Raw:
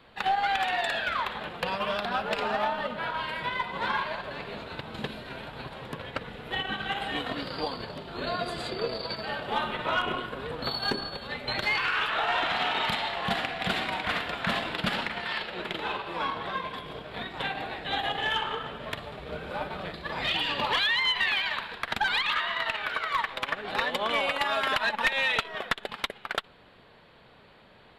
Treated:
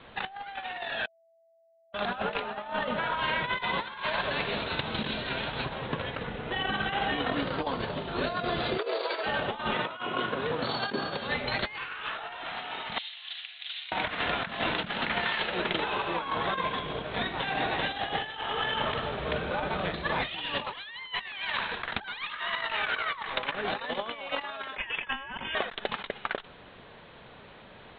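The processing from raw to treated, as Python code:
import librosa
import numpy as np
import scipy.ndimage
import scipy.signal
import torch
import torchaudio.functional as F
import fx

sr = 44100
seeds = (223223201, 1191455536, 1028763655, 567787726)

y = fx.high_shelf(x, sr, hz=3300.0, db=11.5, at=(3.57, 5.65))
y = fx.lowpass(y, sr, hz=3000.0, slope=6, at=(6.25, 7.8))
y = fx.steep_highpass(y, sr, hz=330.0, slope=48, at=(8.77, 9.24), fade=0.02)
y = fx.highpass(y, sr, hz=120.0, slope=12, at=(9.74, 11.28))
y = fx.ladder_bandpass(y, sr, hz=4300.0, resonance_pct=35, at=(12.98, 13.92))
y = fx.echo_single(y, sr, ms=388, db=-5.0, at=(17.21, 19.42))
y = fx.freq_invert(y, sr, carrier_hz=3500, at=(24.76, 25.55))
y = fx.edit(y, sr, fx.bleep(start_s=1.07, length_s=0.86, hz=661.0, db=-11.5), tone=tone)
y = scipy.signal.sosfilt(scipy.signal.butter(12, 4000.0, 'lowpass', fs=sr, output='sos'), y)
y = fx.over_compress(y, sr, threshold_db=-33.0, ratio=-0.5)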